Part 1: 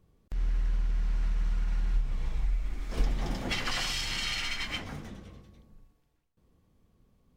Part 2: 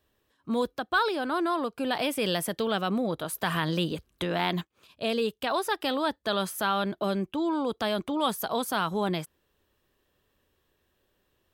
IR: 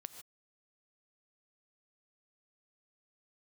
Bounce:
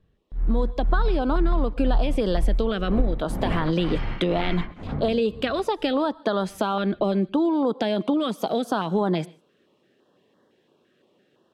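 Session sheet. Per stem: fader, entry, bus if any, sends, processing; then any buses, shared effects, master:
+1.0 dB, 0.00 s, no send, Bessel low-pass 1.1 kHz, order 2; tremolo of two beating tones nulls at 2 Hz
0.0 dB, 0.00 s, send -7 dB, high-pass 160 Hz 24 dB/octave; compression, threshold -29 dBFS, peak gain reduction 9 dB; step-sequenced notch 5.9 Hz 890–2500 Hz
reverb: on, pre-delay 3 ms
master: level rider gain up to 12 dB; tape spacing loss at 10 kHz 20 dB; compression 2.5:1, threshold -18 dBFS, peak gain reduction 7.5 dB

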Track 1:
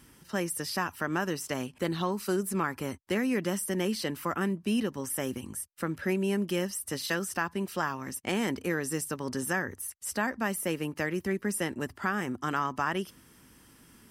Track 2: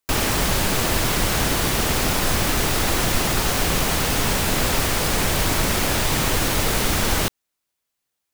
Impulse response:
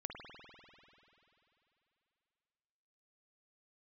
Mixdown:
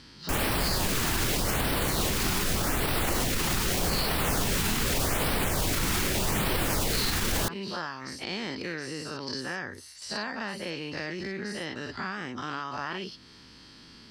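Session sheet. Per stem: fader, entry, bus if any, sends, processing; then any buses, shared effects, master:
-0.5 dB, 0.00 s, no send, every event in the spectrogram widened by 120 ms; compression 2:1, threshold -38 dBFS, peak gain reduction 10.5 dB; resonant low-pass 4.4 kHz, resonance Q 7.5
-1.5 dB, 0.20 s, no send, LFO notch sine 0.83 Hz 520–6900 Hz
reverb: none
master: peak limiter -17.5 dBFS, peak gain reduction 10 dB

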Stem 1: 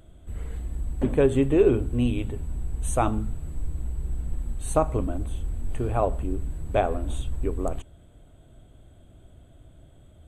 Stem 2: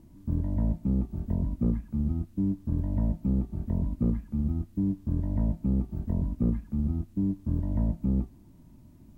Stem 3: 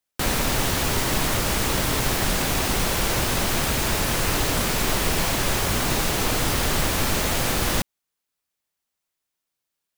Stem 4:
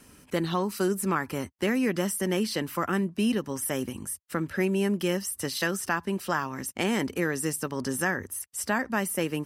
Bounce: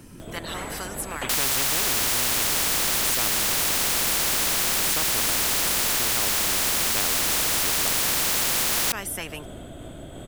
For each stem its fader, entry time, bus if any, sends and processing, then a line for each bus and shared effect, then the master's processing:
+0.5 dB, 0.20 s, no send, random flutter of the level, depth 55%
-14.5 dB, 0.00 s, no send, whisper effect
-15.5 dB, 1.10 s, no send, none
-19.0 dB, 0.00 s, no send, none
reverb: none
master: spectrum-flattening compressor 10:1

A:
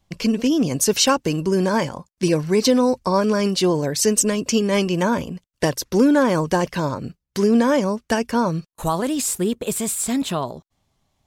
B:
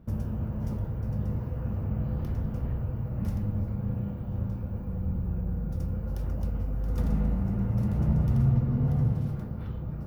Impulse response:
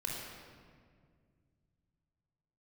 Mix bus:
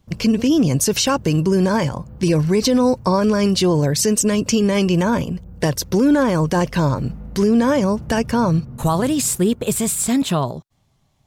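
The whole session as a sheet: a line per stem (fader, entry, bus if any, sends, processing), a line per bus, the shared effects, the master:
+3.0 dB, 0.00 s, no send, peaking EQ 130 Hz +7.5 dB 0.91 oct
-8.0 dB, 0.00 s, no send, none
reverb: none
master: peak limiter -8 dBFS, peak gain reduction 6.5 dB

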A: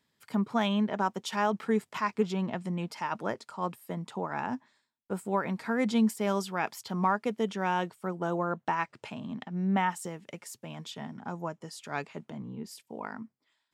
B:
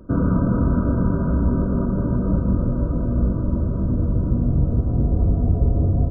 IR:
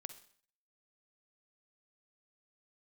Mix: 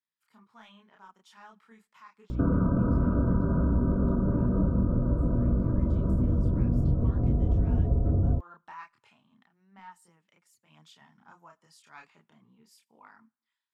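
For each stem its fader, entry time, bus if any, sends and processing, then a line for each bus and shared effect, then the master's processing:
6.31 s -19 dB -> 6.88 s -12 dB -> 8.88 s -12 dB -> 9.38 s -19 dB -> 10.50 s -19 dB -> 10.82 s -11 dB, 0.00 s, send -11.5 dB, resonant low shelf 790 Hz -8 dB, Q 1.5; saturation -16.5 dBFS, distortion -23 dB; chorus voices 4, 1.1 Hz, delay 29 ms, depth 3 ms
+2.5 dB, 2.30 s, no send, hum 60 Hz, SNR 15 dB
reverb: on, RT60 0.55 s, pre-delay 43 ms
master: compression 2.5:1, threshold -25 dBFS, peak gain reduction 10.5 dB

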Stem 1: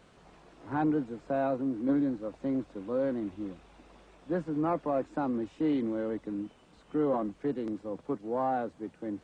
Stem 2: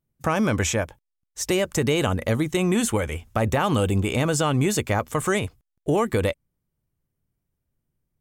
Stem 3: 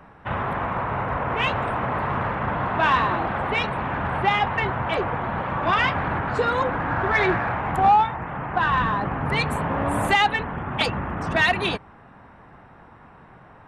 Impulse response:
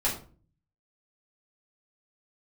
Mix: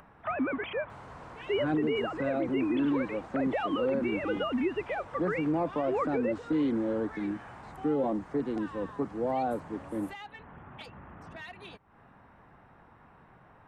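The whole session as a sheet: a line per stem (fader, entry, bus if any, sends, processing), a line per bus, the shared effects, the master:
+2.5 dB, 0.90 s, no send, LFO notch saw up 1.6 Hz 560–3200 Hz
-8.5 dB, 0.00 s, no send, formants replaced by sine waves
-11.5 dB, 0.00 s, no send, compression 2.5:1, threshold -38 dBFS, peak gain reduction 16 dB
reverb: none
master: peaking EQ 12 kHz +6.5 dB 0.21 oct; upward compressor, threshold -51 dBFS; peak limiter -21 dBFS, peak gain reduction 7 dB

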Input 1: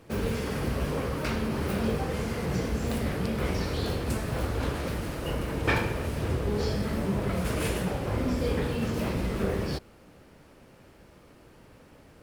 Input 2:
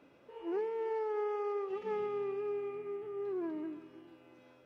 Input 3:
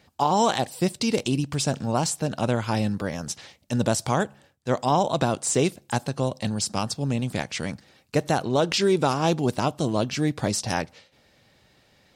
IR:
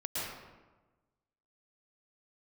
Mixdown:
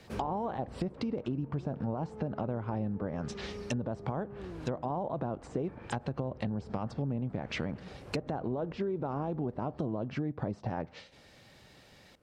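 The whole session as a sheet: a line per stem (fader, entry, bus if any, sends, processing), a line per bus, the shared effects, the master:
-6.5 dB, 0.00 s, no send, auto duck -11 dB, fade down 1.20 s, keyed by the third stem
-1.5 dB, 1.10 s, no send, octave divider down 1 oct, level +2 dB; compression, threshold -40 dBFS, peak gain reduction 10 dB
+2.0 dB, 0.00 s, no send, peak limiter -16.5 dBFS, peak gain reduction 7 dB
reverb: none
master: low-pass that closes with the level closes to 980 Hz, closed at -22.5 dBFS; compression, threshold -31 dBFS, peak gain reduction 11.5 dB

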